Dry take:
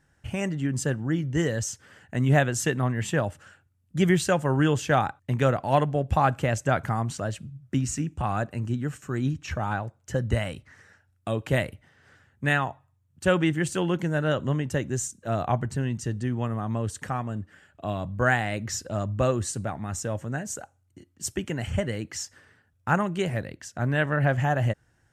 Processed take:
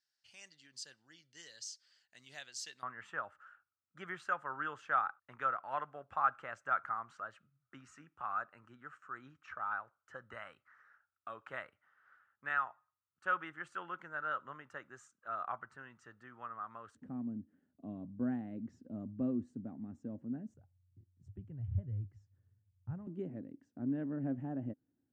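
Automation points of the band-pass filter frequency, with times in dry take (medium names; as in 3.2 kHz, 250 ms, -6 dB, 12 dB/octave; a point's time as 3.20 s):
band-pass filter, Q 6.3
4.6 kHz
from 2.83 s 1.3 kHz
from 16.95 s 250 Hz
from 20.54 s 100 Hz
from 23.07 s 270 Hz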